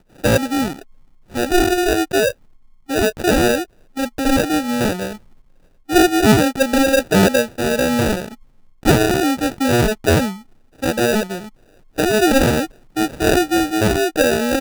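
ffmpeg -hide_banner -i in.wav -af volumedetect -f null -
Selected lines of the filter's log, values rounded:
mean_volume: -17.8 dB
max_volume: -2.7 dB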